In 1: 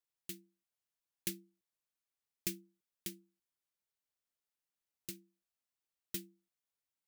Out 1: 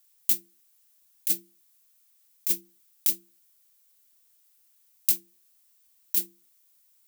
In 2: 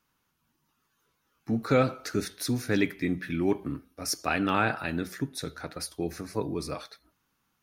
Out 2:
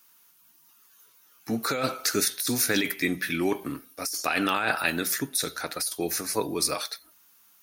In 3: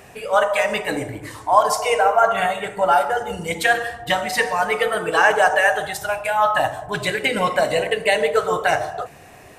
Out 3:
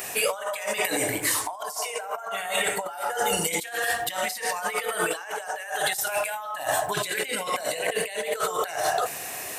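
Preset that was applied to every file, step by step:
RIAA curve recording; negative-ratio compressor -29 dBFS, ratio -1; match loudness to -27 LUFS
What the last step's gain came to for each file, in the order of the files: +7.5, +4.0, -1.0 dB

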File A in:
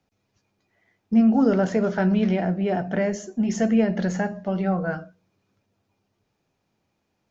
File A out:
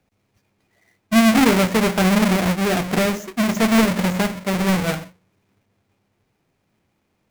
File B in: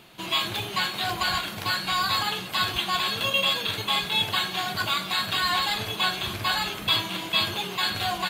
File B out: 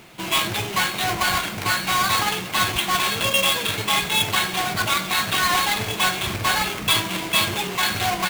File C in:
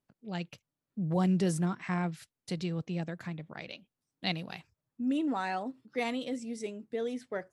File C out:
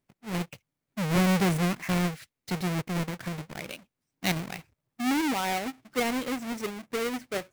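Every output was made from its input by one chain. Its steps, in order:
half-waves squared off; bell 2200 Hz +4.5 dB 0.46 oct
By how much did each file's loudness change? +4.5, +4.5, +4.5 LU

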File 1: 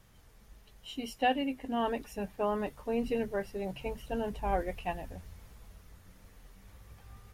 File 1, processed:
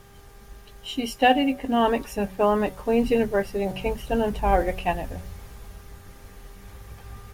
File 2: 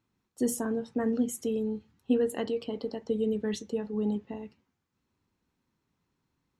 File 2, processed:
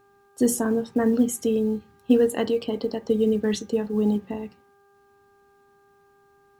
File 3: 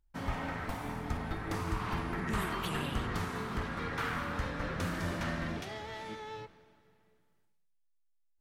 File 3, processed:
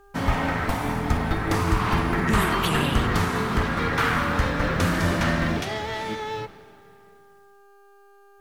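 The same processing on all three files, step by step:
de-hum 187.5 Hz, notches 8; buzz 400 Hz, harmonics 4, -67 dBFS -4 dB/oct; companded quantiser 8-bit; match loudness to -24 LUFS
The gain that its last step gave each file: +10.5, +7.5, +13.0 dB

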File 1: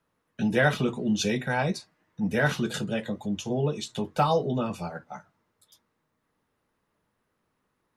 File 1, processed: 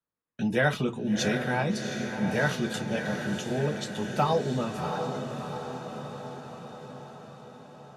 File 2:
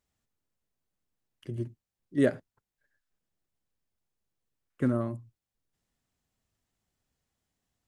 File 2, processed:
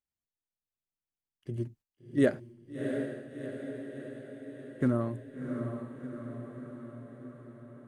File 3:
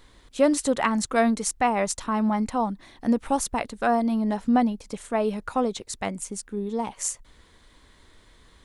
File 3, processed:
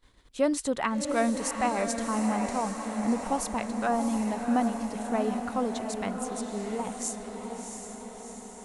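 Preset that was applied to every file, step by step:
gate -53 dBFS, range -16 dB; on a send: diffused feedback echo 0.699 s, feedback 62%, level -6 dB; on the sum: normalise peaks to -12 dBFS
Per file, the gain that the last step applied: -2.0, -0.5, -5.5 dB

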